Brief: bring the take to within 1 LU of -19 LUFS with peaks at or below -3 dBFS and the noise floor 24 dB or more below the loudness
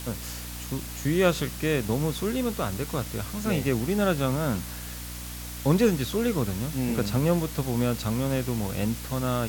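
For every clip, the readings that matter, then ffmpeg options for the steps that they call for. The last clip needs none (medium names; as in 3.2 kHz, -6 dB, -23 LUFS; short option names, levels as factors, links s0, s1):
hum 60 Hz; highest harmonic 300 Hz; hum level -37 dBFS; noise floor -37 dBFS; noise floor target -52 dBFS; loudness -27.5 LUFS; peak level -11.0 dBFS; loudness target -19.0 LUFS
-> -af "bandreject=f=60:t=h:w=6,bandreject=f=120:t=h:w=6,bandreject=f=180:t=h:w=6,bandreject=f=240:t=h:w=6,bandreject=f=300:t=h:w=6"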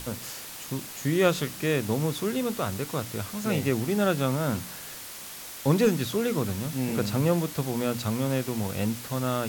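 hum not found; noise floor -41 dBFS; noise floor target -52 dBFS
-> -af "afftdn=nr=11:nf=-41"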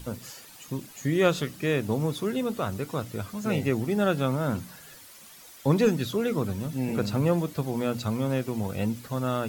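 noise floor -49 dBFS; noise floor target -52 dBFS
-> -af "afftdn=nr=6:nf=-49"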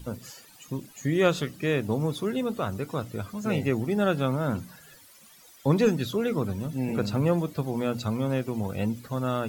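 noise floor -53 dBFS; loudness -28.0 LUFS; peak level -11.0 dBFS; loudness target -19.0 LUFS
-> -af "volume=2.82,alimiter=limit=0.708:level=0:latency=1"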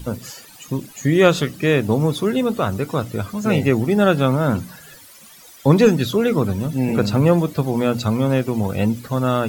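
loudness -19.0 LUFS; peak level -3.0 dBFS; noise floor -44 dBFS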